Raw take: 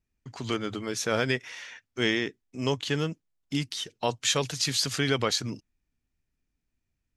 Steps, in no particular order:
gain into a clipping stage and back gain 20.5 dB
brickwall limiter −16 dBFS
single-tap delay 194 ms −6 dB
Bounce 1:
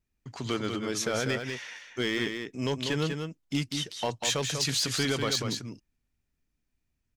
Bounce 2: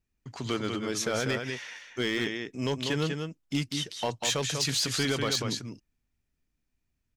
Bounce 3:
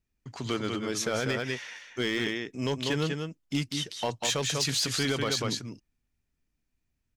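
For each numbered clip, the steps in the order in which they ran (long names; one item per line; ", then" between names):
brickwall limiter, then gain into a clipping stage and back, then single-tap delay
brickwall limiter, then single-tap delay, then gain into a clipping stage and back
single-tap delay, then brickwall limiter, then gain into a clipping stage and back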